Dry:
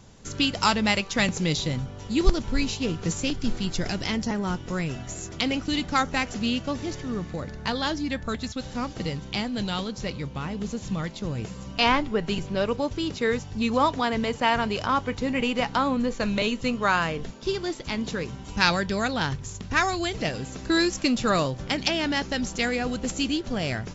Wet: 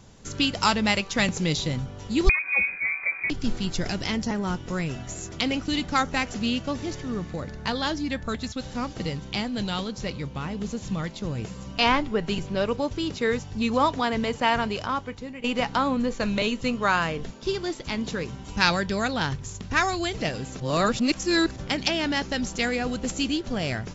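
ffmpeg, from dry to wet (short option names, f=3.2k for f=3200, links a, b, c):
-filter_complex "[0:a]asettb=1/sr,asplit=3[a][b][c];[a]atrim=end=2.294[d];[b]atrim=start=2.29:end=3.3,asetpts=PTS-STARTPTS,afade=t=in:d=0.004:c=qsin,afade=t=out:st=1.006:d=0.004:c=qsin,lowpass=f=2.1k:t=q:w=0.5098,lowpass=f=2.1k:t=q:w=0.6013,lowpass=f=2.1k:t=q:w=0.9,lowpass=f=2.1k:t=q:w=2.563,afreqshift=-2500[e];[c]atrim=start=3.296[f];[d][e]acrossfade=d=0.004:c1=hsin:c2=qsin[g];[g][f]acrossfade=d=0.004:c1=qsin:c2=hsin,asplit=4[h][i][j][k];[h]atrim=end=15.44,asetpts=PTS-STARTPTS,afade=t=out:st=14.57:d=0.87:silence=0.149624[l];[i]atrim=start=15.44:end=20.602,asetpts=PTS-STARTPTS,afade=t=in:d=0.004:c=hsin:silence=0.149624[m];[j]atrim=start=20.598:end=21.562,asetpts=PTS-STARTPTS,areverse[n];[k]atrim=start=21.558[o];[l][m]concat=n=2:v=0:a=1[p];[p][n]acrossfade=d=0.004:c1=hsin:c2=hsin[q];[q][o]acrossfade=d=0.004:c1=hsin:c2=hsin"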